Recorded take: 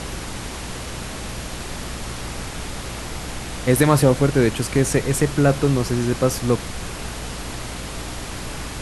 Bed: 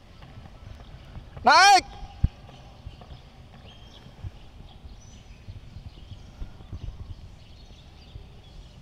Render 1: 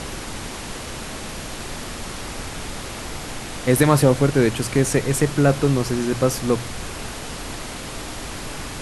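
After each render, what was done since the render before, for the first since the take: de-hum 60 Hz, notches 3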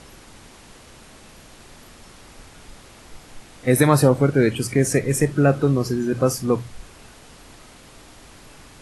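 noise print and reduce 14 dB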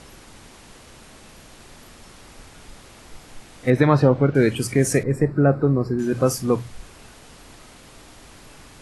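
3.7–4.35 air absorption 210 m; 5.03–5.99 running mean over 14 samples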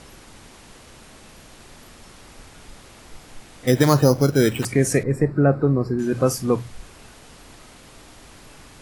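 3.67–4.65 careless resampling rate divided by 8×, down none, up hold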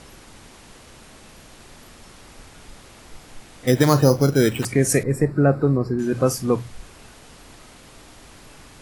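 3.86–4.36 doubler 37 ms -13.5 dB; 4.88–5.76 high shelf 7600 Hz -> 4400 Hz +11 dB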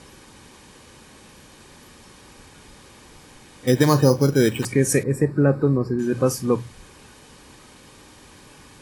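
notch comb 680 Hz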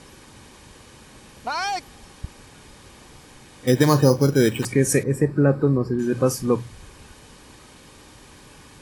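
add bed -11 dB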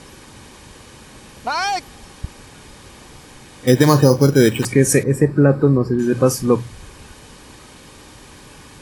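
gain +5 dB; limiter -1 dBFS, peak gain reduction 2.5 dB

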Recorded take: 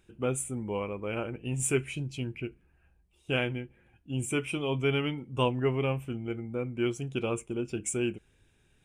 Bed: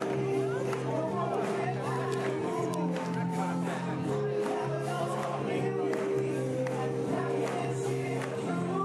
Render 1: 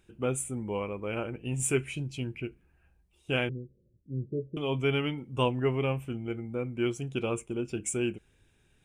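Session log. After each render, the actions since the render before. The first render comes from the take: 3.49–4.57 rippled Chebyshev low-pass 590 Hz, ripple 6 dB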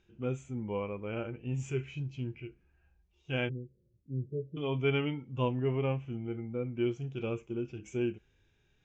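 harmonic-percussive split percussive -14 dB; elliptic low-pass 6600 Hz, stop band 40 dB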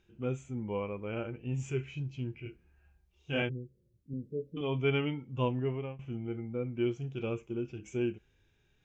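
2.43–3.42 doubler 27 ms -2 dB; 4.13–4.61 comb 4 ms; 5.57–5.99 fade out, to -18.5 dB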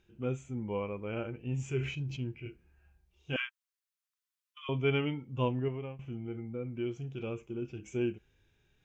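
1.75–2.2 sustainer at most 74 dB/s; 3.36–4.69 steep high-pass 1000 Hz 96 dB/oct; 5.68–7.62 compressor 1.5:1, threshold -38 dBFS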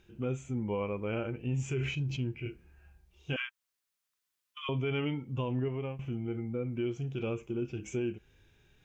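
in parallel at +0.5 dB: compressor, threshold -41 dBFS, peak gain reduction 16 dB; on the sum: limiter -24.5 dBFS, peak gain reduction 8 dB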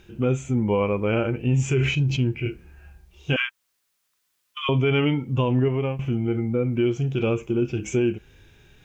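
gain +11.5 dB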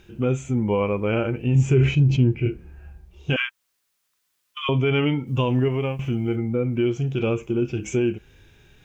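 1.55–3.3 tilt shelf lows +5 dB, about 1100 Hz; 5.27–6.36 high shelf 2800 Hz +7 dB

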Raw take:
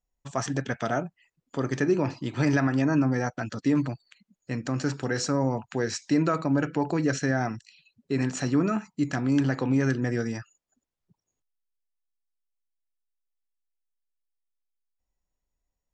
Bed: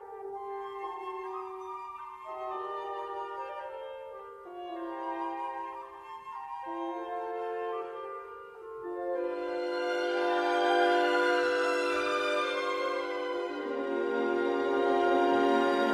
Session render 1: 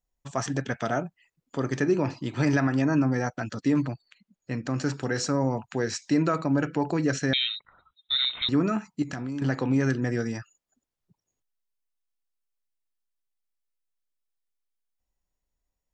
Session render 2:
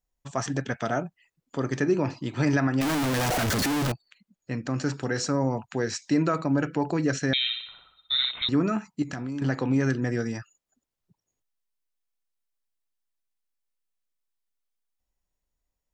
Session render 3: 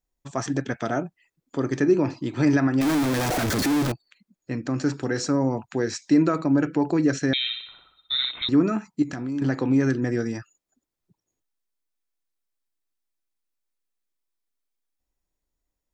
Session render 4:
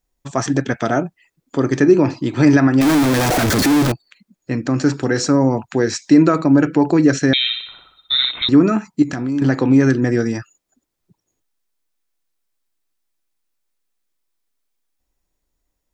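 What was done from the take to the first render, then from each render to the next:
3.84–4.7 air absorption 58 m; 7.33–8.49 inverted band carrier 3900 Hz; 9.02–9.42 compressor, threshold -29 dBFS
2.81–3.92 infinite clipping; 7.38–8.31 flutter echo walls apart 10.7 m, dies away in 0.68 s
bell 320 Hz +6.5 dB 0.67 oct; notch 2900 Hz, Q 20
gain +8 dB; limiter -2 dBFS, peak gain reduction 1.5 dB

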